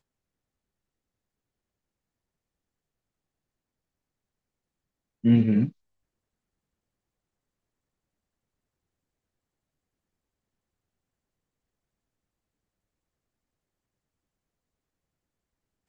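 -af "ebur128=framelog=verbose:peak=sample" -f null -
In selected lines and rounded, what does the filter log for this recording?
Integrated loudness:
  I:         -23.1 LUFS
  Threshold: -33.6 LUFS
Loudness range:
  LRA:         5.8 LU
  Threshold: -49.4 LUFS
  LRA low:   -34.6 LUFS
  LRA high:  -28.8 LUFS
Sample peak:
  Peak:       -9.1 dBFS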